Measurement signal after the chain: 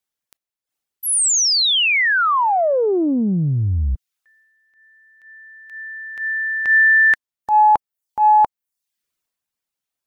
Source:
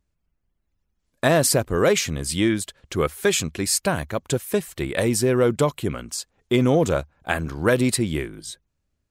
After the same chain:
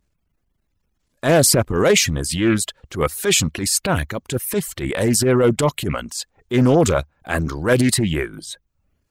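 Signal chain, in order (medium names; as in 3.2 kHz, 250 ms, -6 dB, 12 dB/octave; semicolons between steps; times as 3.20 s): reverb removal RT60 0.5 s; transient shaper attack -10 dB, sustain +5 dB; loudspeaker Doppler distortion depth 0.23 ms; trim +5.5 dB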